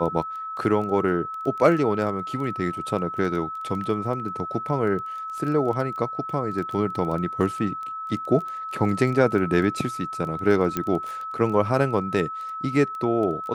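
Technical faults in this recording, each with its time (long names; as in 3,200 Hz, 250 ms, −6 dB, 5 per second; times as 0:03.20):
surface crackle 11 per second −30 dBFS
whistle 1,300 Hz −30 dBFS
0:10.77: click −11 dBFS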